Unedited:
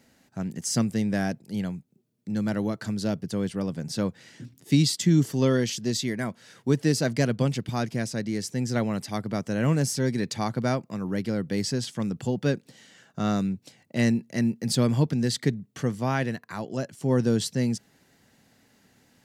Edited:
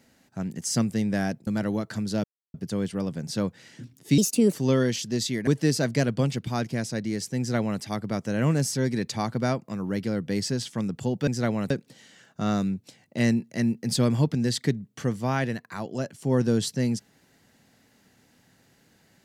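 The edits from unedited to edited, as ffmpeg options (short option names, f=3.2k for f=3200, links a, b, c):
-filter_complex "[0:a]asplit=8[a][b][c][d][e][f][g][h];[a]atrim=end=1.472[i];[b]atrim=start=2.378:end=3.15,asetpts=PTS-STARTPTS,afade=t=out:st=0.768:d=0.004:c=hsin,apad=pad_dur=0.3[j];[c]atrim=start=3.15:end=4.794,asetpts=PTS-STARTPTS,afade=t=in:d=0.004:c=hsin[k];[d]atrim=start=4.79:end=5.27,asetpts=PTS-STARTPTS,asetrate=59976,aresample=44100[l];[e]atrim=start=5.266:end=6.212[m];[f]atrim=start=6.688:end=12.492[n];[g]atrim=start=8.598:end=9.032[o];[h]atrim=start=12.488[p];[j][k]concat=n=2:v=0:a=1[q];[i][q]acrossfade=d=0.004:c1=hsin:c2=hsin[r];[r][l]acrossfade=d=0.004:c1=hsin:c2=hsin[s];[s][m]acrossfade=d=0.004:c1=hsin:c2=hsin[t];[t][n]acrossfade=d=0.004:c1=hsin:c2=hsin[u];[u][o]acrossfade=d=0.004:c1=hsin:c2=hsin[v];[v][p]acrossfade=d=0.004:c1=hsin:c2=hsin"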